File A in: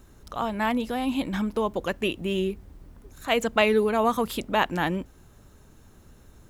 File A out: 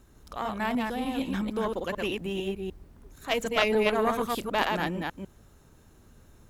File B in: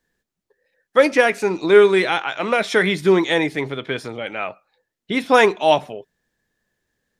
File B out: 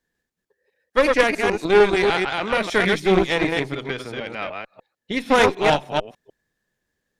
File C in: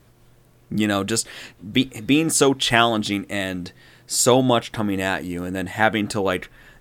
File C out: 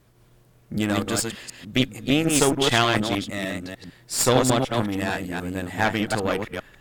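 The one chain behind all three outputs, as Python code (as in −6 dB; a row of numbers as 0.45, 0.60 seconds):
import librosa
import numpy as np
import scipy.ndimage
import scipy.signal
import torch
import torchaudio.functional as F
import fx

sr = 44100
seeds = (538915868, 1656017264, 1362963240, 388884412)

y = fx.reverse_delay(x, sr, ms=150, wet_db=-3)
y = fx.cheby_harmonics(y, sr, harmonics=(6,), levels_db=(-17,), full_scale_db=1.5)
y = y * 10.0 ** (-4.5 / 20.0)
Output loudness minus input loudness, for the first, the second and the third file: −3.0, −2.5, −2.5 LU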